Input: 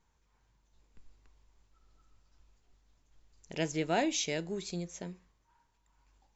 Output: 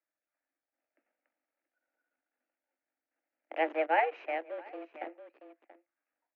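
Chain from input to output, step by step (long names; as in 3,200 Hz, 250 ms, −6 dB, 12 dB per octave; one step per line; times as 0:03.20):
power curve on the samples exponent 1.4
phaser with its sweep stopped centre 910 Hz, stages 6
in parallel at −4 dB: comparator with hysteresis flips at −49 dBFS
on the sum: single-sideband voice off tune +160 Hz 150–2,800 Hz
on a send: single-tap delay 681 ms −16.5 dB
0:03.87–0:04.95: on the sum: expander for the loud parts 1.5 to 1, over −48 dBFS
level +9 dB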